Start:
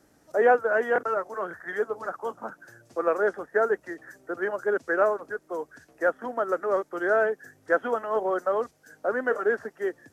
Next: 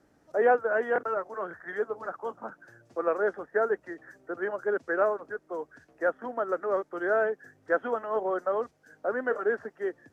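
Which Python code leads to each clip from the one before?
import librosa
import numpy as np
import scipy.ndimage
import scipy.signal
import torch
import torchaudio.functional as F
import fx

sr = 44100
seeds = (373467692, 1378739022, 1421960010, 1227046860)

y = fx.lowpass(x, sr, hz=2800.0, slope=6)
y = F.gain(torch.from_numpy(y), -2.5).numpy()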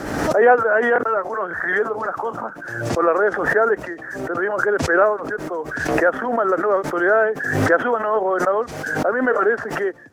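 y = fx.peak_eq(x, sr, hz=1400.0, db=3.5, octaves=2.2)
y = fx.pre_swell(y, sr, db_per_s=42.0)
y = F.gain(torch.from_numpy(y), 7.0).numpy()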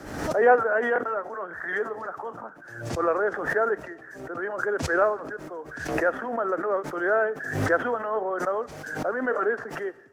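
y = fx.rev_plate(x, sr, seeds[0], rt60_s=1.6, hf_ratio=1.0, predelay_ms=0, drr_db=18.5)
y = fx.band_widen(y, sr, depth_pct=40)
y = F.gain(torch.from_numpy(y), -7.5).numpy()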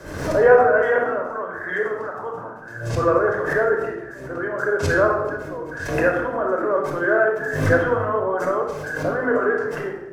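y = fx.room_shoebox(x, sr, seeds[1], volume_m3=3100.0, walls='furnished', distance_m=5.2)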